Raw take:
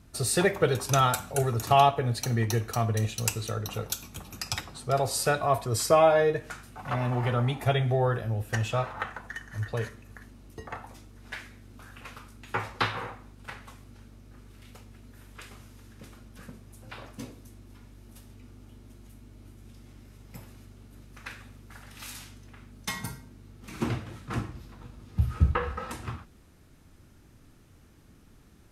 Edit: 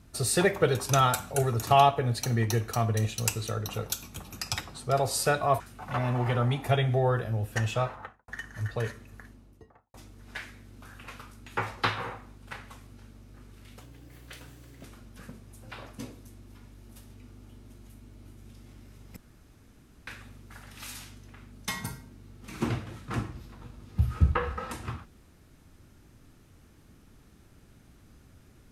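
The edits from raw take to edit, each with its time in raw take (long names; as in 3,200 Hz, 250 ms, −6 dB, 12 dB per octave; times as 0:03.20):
0:05.60–0:06.57: remove
0:08.74–0:09.25: fade out and dull
0:10.06–0:10.91: fade out and dull
0:14.78–0:16.04: play speed 122%
0:20.36–0:21.27: fill with room tone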